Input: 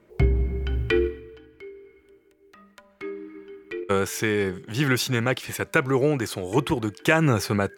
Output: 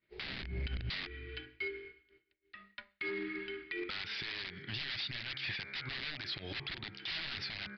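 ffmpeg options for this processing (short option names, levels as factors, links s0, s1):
-af "bandreject=f=67.6:t=h:w=4,bandreject=f=135.2:t=h:w=4,bandreject=f=202.8:t=h:w=4,bandreject=f=270.4:t=h:w=4,bandreject=f=338:t=h:w=4,bandreject=f=405.6:t=h:w=4,bandreject=f=473.2:t=h:w=4,bandreject=f=540.8:t=h:w=4,bandreject=f=608.4:t=h:w=4,bandreject=f=676:t=h:w=4,bandreject=f=743.6:t=h:w=4,bandreject=f=811.2:t=h:w=4,bandreject=f=878.8:t=h:w=4,bandreject=f=946.4:t=h:w=4,bandreject=f=1014:t=h:w=4,bandreject=f=1081.6:t=h:w=4,bandreject=f=1149.2:t=h:w=4,bandreject=f=1216.8:t=h:w=4,bandreject=f=1284.4:t=h:w=4,bandreject=f=1352:t=h:w=4,bandreject=f=1419.6:t=h:w=4,bandreject=f=1487.2:t=h:w=4,bandreject=f=1554.8:t=h:w=4,bandreject=f=1622.4:t=h:w=4,bandreject=f=1690:t=h:w=4,bandreject=f=1757.6:t=h:w=4,bandreject=f=1825.2:t=h:w=4,bandreject=f=1892.8:t=h:w=4,bandreject=f=1960.4:t=h:w=4,bandreject=f=2028:t=h:w=4,bandreject=f=2095.6:t=h:w=4,bandreject=f=2163.2:t=h:w=4,bandreject=f=2230.8:t=h:w=4,bandreject=f=2298.4:t=h:w=4,bandreject=f=2366:t=h:w=4,agate=range=0.0224:threshold=0.00631:ratio=3:detection=peak,aresample=16000,aeval=exprs='(mod(9.44*val(0)+1,2)-1)/9.44':c=same,aresample=44100,equalizer=f=250:t=o:w=1:g=-3,equalizer=f=500:t=o:w=1:g=-7,equalizer=f=1000:t=o:w=1:g=-6,equalizer=f=2000:t=o:w=1:g=10,equalizer=f=4000:t=o:w=1:g=11,acompressor=threshold=0.0224:ratio=6,alimiter=level_in=2.24:limit=0.0631:level=0:latency=1:release=78,volume=0.447,asoftclip=type=hard:threshold=0.0141,aresample=11025,aresample=44100,bandreject=f=480:w=15,volume=1.58"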